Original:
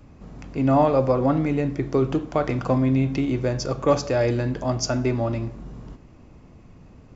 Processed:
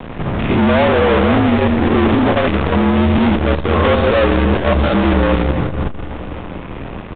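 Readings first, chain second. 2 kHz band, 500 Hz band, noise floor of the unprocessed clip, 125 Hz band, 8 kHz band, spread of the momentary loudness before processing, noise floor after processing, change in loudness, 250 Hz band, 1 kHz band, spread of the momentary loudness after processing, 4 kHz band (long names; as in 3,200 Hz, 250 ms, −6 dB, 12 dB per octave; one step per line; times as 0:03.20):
+16.0 dB, +8.0 dB, −49 dBFS, +7.5 dB, can't be measured, 13 LU, −28 dBFS, +8.5 dB, +9.5 dB, +9.5 dB, 15 LU, +12.0 dB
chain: spectrum averaged block by block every 100 ms
low-shelf EQ 170 Hz −4.5 dB
downward compressor 4 to 1, threshold −27 dBFS, peak gain reduction 10.5 dB
fuzz pedal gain 43 dB, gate −51 dBFS
frequency shifter −49 Hz
echo machine with several playback heads 82 ms, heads all three, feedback 71%, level −20 dB
downsampling to 8,000 Hz
saturating transformer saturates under 140 Hz
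level +2.5 dB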